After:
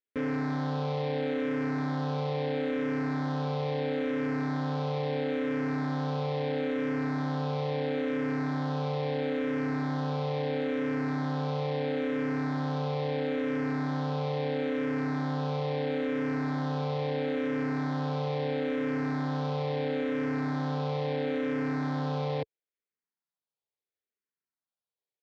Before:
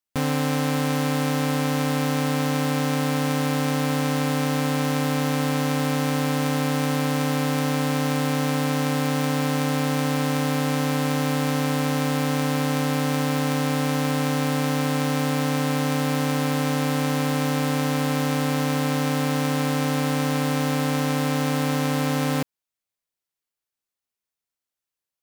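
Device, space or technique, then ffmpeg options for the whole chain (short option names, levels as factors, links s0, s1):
barber-pole phaser into a guitar amplifier: -filter_complex "[0:a]asplit=2[s0][s1];[s1]afreqshift=-0.75[s2];[s0][s2]amix=inputs=2:normalize=1,asoftclip=type=tanh:threshold=0.075,highpass=100,equalizer=f=440:t=q:w=4:g=7,equalizer=f=1200:t=q:w=4:g=-4,equalizer=f=2800:t=q:w=4:g=-8,lowpass=f=3800:w=0.5412,lowpass=f=3800:w=1.3066,volume=0.75"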